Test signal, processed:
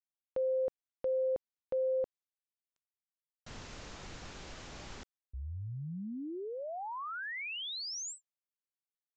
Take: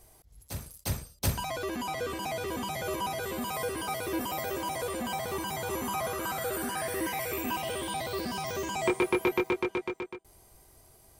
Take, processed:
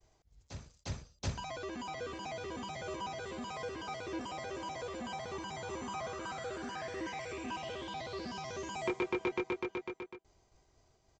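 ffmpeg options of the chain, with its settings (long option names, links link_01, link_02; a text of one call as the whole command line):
ffmpeg -i in.wav -af "aresample=16000,aresample=44100,agate=range=-33dB:threshold=-57dB:ratio=3:detection=peak,volume=-7.5dB" out.wav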